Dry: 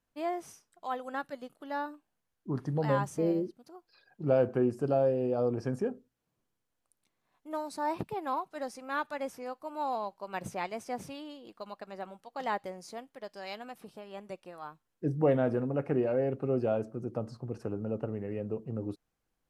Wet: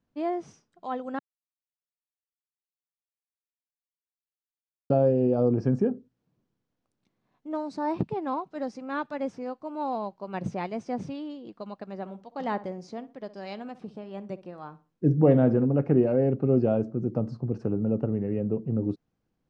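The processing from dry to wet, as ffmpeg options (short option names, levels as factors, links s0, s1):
-filter_complex "[0:a]asettb=1/sr,asplit=3[s0][s1][s2];[s0]atrim=end=11.954[s3];[s1]atrim=start=11.95:end=15.67,asetpts=PTS-STARTPTS,afade=t=in:d=0.004:c=qsin,afade=t=out:st=3.716:d=0.004:c=qsin,asplit=2[s4][s5];[s5]adelay=62,lowpass=f=2000:p=1,volume=0.168,asplit=2[s6][s7];[s7]adelay=62,lowpass=f=2000:p=1,volume=0.33,asplit=2[s8][s9];[s9]adelay=62,lowpass=f=2000:p=1,volume=0.33[s10];[s4][s6][s8][s10]amix=inputs=4:normalize=0,atrim=end_sample=164052[s11];[s2]atrim=start=15.666[s12];[s3][s11]acrossfade=d=0.004:c1=hsin:c2=qsin[s13];[s13][s12]acrossfade=d=0.004:c1=qsin:c2=hsin,asplit=3[s14][s15][s16];[s14]atrim=end=1.19,asetpts=PTS-STARTPTS,afade=t=out:st=1.186:d=0.004:c=hsin[s17];[s15]atrim=start=1.19:end=4.9,asetpts=PTS-STARTPTS,volume=0[s18];[s16]atrim=start=4.9,asetpts=PTS-STARTPTS,afade=t=in:d=0.004:c=hsin[s19];[s17][s18][s19]concat=n=3:v=0:a=1,lowpass=f=6300:w=0.5412,lowpass=f=6300:w=1.3066,equalizer=f=180:w=0.41:g=13,volume=0.794"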